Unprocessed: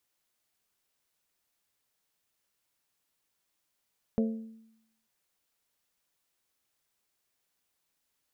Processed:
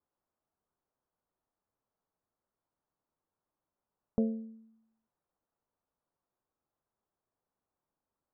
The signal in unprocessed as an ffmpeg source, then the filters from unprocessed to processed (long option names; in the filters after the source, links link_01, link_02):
-f lavfi -i "aevalsrc='0.075*pow(10,-3*t/0.83)*sin(2*PI*223*t)+0.0376*pow(10,-3*t/0.511)*sin(2*PI*446*t)+0.0188*pow(10,-3*t/0.45)*sin(2*PI*535.2*t)+0.00944*pow(10,-3*t/0.385)*sin(2*PI*669*t)':duration=0.89:sample_rate=44100"
-af "lowpass=frequency=1200:width=0.5412,lowpass=frequency=1200:width=1.3066"